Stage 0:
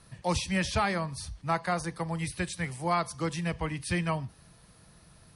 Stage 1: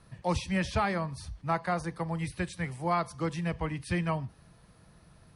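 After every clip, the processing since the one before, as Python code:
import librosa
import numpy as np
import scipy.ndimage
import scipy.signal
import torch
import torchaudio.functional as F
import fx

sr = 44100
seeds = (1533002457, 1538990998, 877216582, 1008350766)

y = fx.high_shelf(x, sr, hz=3200.0, db=-9.0)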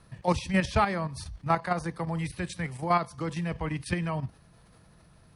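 y = fx.level_steps(x, sr, step_db=9)
y = F.gain(torch.from_numpy(y), 6.0).numpy()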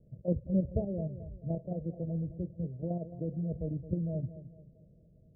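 y = scipy.signal.sosfilt(scipy.signal.cheby1(6, 3, 640.0, 'lowpass', fs=sr, output='sos'), x)
y = fx.echo_feedback(y, sr, ms=217, feedback_pct=39, wet_db=-13.5)
y = F.gain(torch.from_numpy(y), -2.0).numpy()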